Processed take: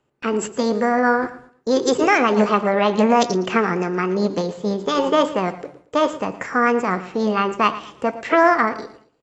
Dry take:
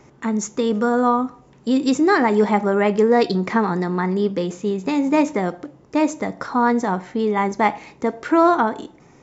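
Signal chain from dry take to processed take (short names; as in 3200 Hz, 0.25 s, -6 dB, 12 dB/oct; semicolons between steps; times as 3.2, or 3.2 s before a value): gate with hold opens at -36 dBFS; formant shift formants +5 st; on a send: feedback echo 0.114 s, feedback 29%, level -16 dB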